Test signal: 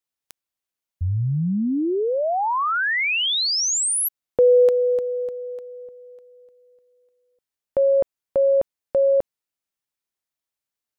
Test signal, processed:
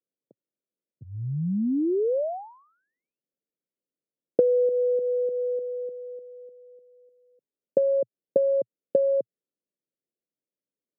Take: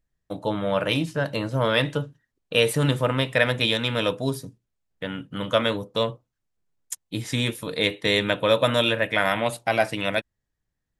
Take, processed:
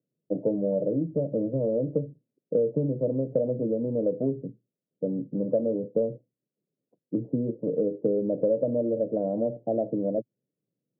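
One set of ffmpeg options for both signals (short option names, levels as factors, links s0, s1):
-af "asuperpass=centerf=260:order=12:qfactor=0.56,acompressor=threshold=0.0251:ratio=3:attack=49:release=250:knee=1:detection=peak,highpass=170,volume=2"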